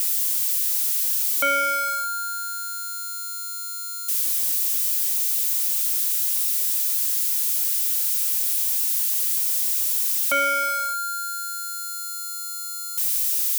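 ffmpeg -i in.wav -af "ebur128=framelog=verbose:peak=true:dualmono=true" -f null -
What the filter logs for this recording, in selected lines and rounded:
Integrated loudness:
  I:         -17.7 LUFS
  Threshold: -27.7 LUFS
Loudness range:
  LRA:         4.6 LU
  Threshold: -37.6 LUFS
  LRA low:   -20.8 LUFS
  LRA high:  -16.2 LUFS
True peak:
  Peak:      -13.6 dBFS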